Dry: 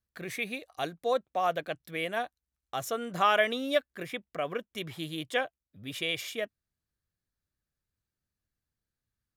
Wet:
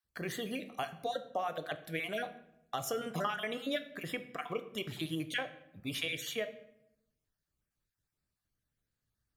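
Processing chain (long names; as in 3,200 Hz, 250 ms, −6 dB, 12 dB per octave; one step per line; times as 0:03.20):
time-frequency cells dropped at random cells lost 27%
downward compressor 6 to 1, threshold −34 dBFS, peak gain reduction 13 dB
rectangular room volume 210 cubic metres, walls mixed, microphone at 0.36 metres
level +1.5 dB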